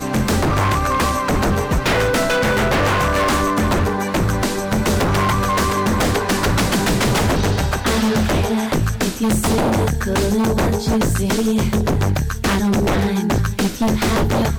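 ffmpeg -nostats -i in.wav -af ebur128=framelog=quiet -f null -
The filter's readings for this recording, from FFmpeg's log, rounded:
Integrated loudness:
  I:         -17.9 LUFS
  Threshold: -27.9 LUFS
Loudness range:
  LRA:         1.0 LU
  Threshold: -37.9 LUFS
  LRA low:   -18.3 LUFS
  LRA high:  -17.2 LUFS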